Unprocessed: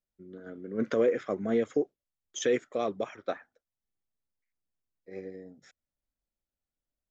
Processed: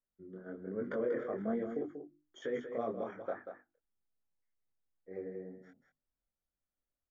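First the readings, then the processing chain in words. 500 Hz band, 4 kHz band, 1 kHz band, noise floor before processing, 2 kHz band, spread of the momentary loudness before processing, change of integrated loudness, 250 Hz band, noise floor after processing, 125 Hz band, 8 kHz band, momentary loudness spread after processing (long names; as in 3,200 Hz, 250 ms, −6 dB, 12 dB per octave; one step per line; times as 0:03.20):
−7.5 dB, −16.0 dB, −5.5 dB, below −85 dBFS, −8.0 dB, 19 LU, −8.5 dB, −6.5 dB, below −85 dBFS, −5.0 dB, can't be measured, 16 LU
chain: mains-hum notches 50/100/150/200/250/300/350 Hz
brickwall limiter −25 dBFS, peak gain reduction 9.5 dB
chorus effect 1.2 Hz, delay 20 ms, depth 7.1 ms
Savitzky-Golay smoothing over 41 samples
on a send: single-tap delay 188 ms −8.5 dB
on the sum: level +1 dB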